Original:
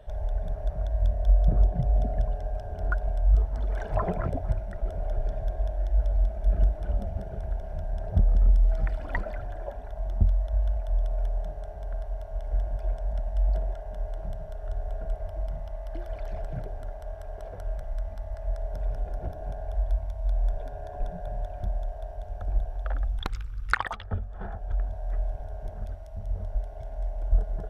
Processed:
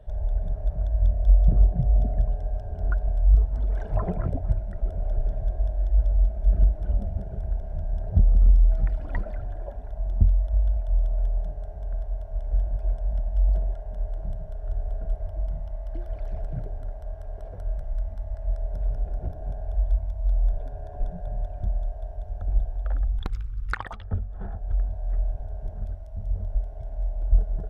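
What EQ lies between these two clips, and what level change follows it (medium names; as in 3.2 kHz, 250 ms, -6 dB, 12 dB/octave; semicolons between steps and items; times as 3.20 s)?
bass shelf 460 Hz +10.5 dB; -7.0 dB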